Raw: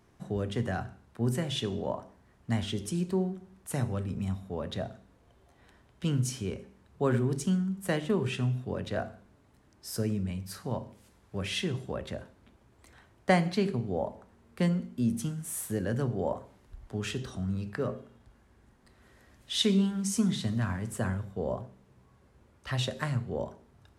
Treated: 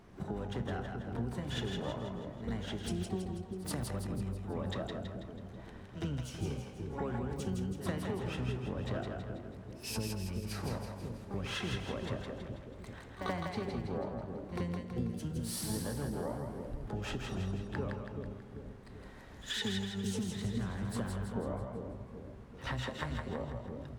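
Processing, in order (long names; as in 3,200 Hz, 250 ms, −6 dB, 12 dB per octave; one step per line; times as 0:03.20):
pitch-shifted copies added −12 semitones −6 dB, +12 semitones −12 dB
in parallel at −6 dB: wrap-around overflow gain 11.5 dB
on the sum: high-shelf EQ 5,000 Hz −8.5 dB
echo ahead of the sound 83 ms −22.5 dB
downward compressor 6 to 1, threshold −37 dBFS, peak gain reduction 20.5 dB
on a send: echo with a time of its own for lows and highs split 520 Hz, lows 388 ms, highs 163 ms, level −4 dB
on the sum: level +1 dB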